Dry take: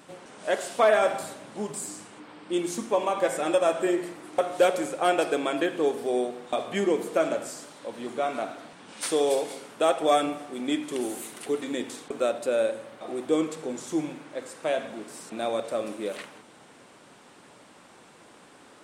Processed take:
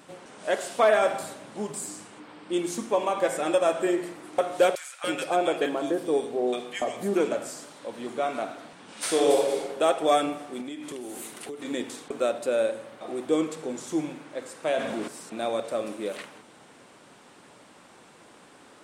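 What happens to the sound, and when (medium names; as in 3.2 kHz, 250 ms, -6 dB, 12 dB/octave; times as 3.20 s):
4.75–7.31 s: bands offset in time highs, lows 290 ms, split 1.3 kHz
8.93–9.61 s: reverb throw, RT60 1.2 s, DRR -0.5 dB
10.61–11.65 s: compression 12:1, threshold -33 dBFS
14.67–15.08 s: level flattener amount 50%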